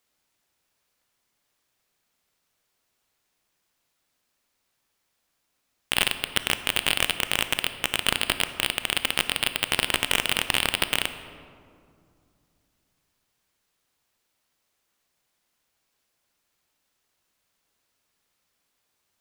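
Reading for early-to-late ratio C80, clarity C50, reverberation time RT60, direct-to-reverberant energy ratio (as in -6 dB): 12.0 dB, 11.0 dB, 2.4 s, 10.0 dB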